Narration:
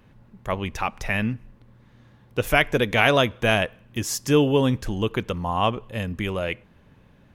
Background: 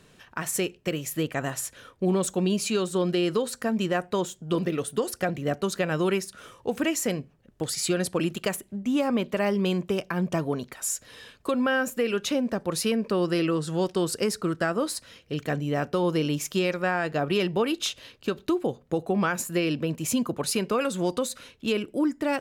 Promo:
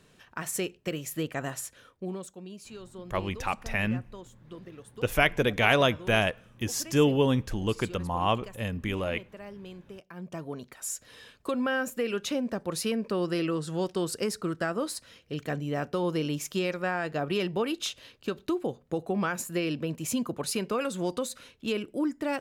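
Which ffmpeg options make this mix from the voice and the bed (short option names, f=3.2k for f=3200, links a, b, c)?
-filter_complex "[0:a]adelay=2650,volume=-4dB[a];[1:a]volume=11dB,afade=t=out:st=1.5:d=0.84:silence=0.177828,afade=t=in:st=10.04:d=1.07:silence=0.177828[b];[a][b]amix=inputs=2:normalize=0"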